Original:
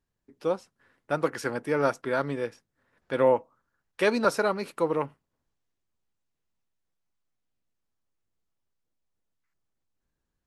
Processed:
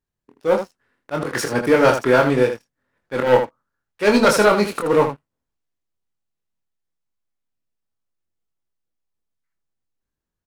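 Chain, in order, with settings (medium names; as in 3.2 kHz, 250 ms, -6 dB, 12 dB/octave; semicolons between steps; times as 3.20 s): waveshaping leveller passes 3; slow attack 112 ms; early reflections 24 ms -4.5 dB, 79 ms -8 dB; trim +1.5 dB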